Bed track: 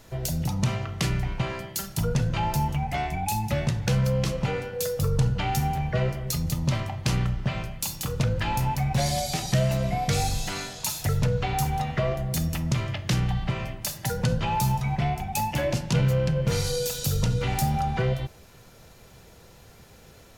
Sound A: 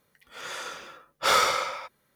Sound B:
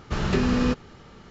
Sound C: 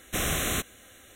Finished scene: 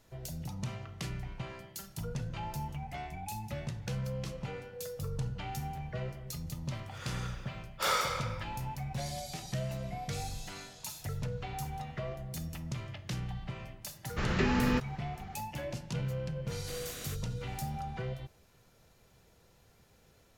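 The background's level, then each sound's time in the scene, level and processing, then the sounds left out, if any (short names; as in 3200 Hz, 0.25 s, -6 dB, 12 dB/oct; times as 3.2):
bed track -13 dB
6.57 add A -8.5 dB
14.06 add B -7 dB + bell 2000 Hz +7 dB 0.86 oct
16.54 add C -17.5 dB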